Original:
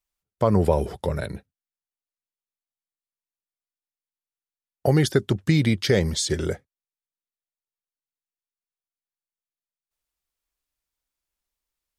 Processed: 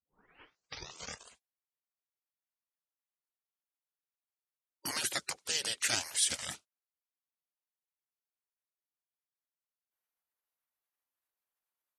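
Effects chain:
turntable start at the beginning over 1.78 s
meter weighting curve ITU-R 468
gate on every frequency bin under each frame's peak −15 dB weak

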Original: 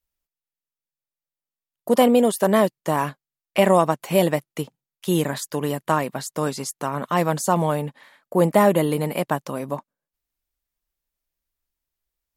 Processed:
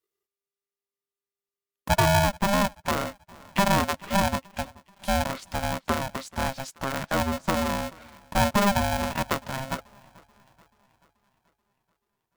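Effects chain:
treble cut that deepens with the level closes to 630 Hz, closed at −16 dBFS
feedback echo with a high-pass in the loop 433 ms, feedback 56%, high-pass 190 Hz, level −23 dB
ring modulator with a square carrier 400 Hz
level −3.5 dB

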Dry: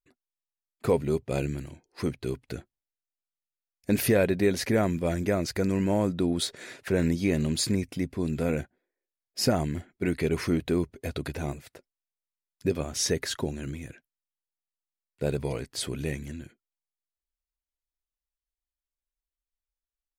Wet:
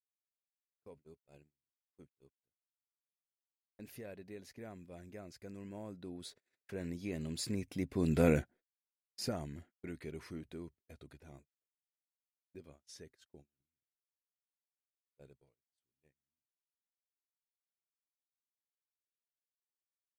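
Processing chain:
source passing by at 0:08.25, 9 m/s, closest 1.9 metres
noise gate −57 dBFS, range −33 dB

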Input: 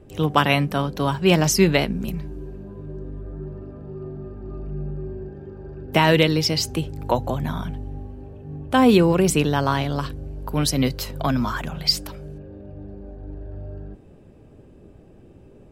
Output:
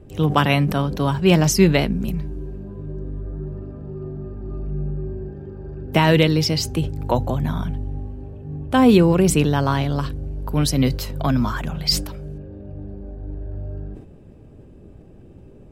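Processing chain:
low-shelf EQ 270 Hz +6 dB
level that may fall only so fast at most 94 dB per second
level −1 dB

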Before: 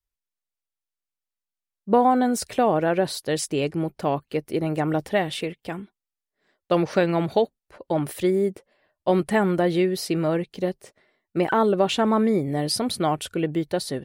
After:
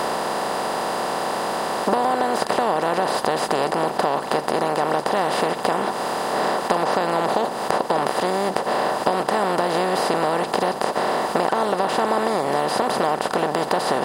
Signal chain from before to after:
compressor on every frequency bin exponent 0.2
parametric band 950 Hz +9.5 dB 1.5 octaves
downward compressor 6 to 1, threshold −15 dBFS, peak gain reduction 12.5 dB
level −2.5 dB

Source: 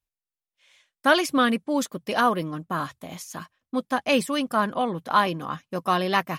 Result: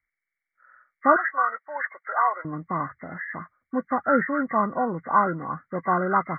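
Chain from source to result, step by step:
hearing-aid frequency compression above 1,100 Hz 4 to 1
0:01.16–0:02.45: high-pass filter 700 Hz 24 dB per octave

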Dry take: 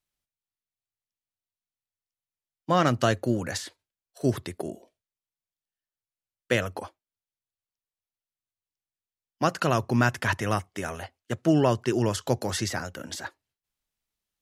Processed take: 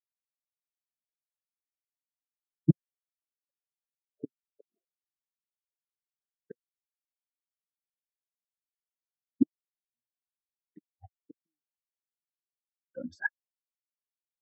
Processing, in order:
0:02.70–0:04.36: notch comb filter 170 Hz
gate with flip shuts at −22 dBFS, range −38 dB
every bin expanded away from the loudest bin 4 to 1
level +3.5 dB

